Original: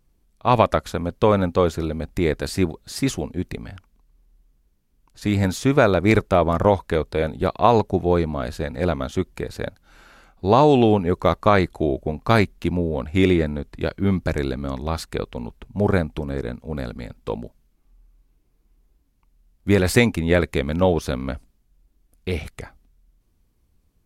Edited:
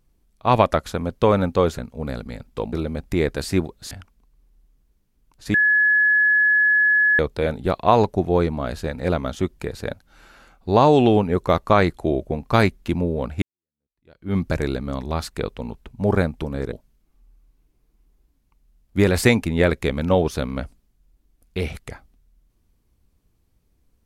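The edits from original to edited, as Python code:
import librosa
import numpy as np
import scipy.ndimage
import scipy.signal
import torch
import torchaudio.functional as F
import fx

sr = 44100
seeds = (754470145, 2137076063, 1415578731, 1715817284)

y = fx.edit(x, sr, fx.cut(start_s=2.96, length_s=0.71),
    fx.bleep(start_s=5.3, length_s=1.65, hz=1700.0, db=-13.5),
    fx.fade_in_span(start_s=13.18, length_s=0.94, curve='exp'),
    fx.move(start_s=16.48, length_s=0.95, to_s=1.78), tone=tone)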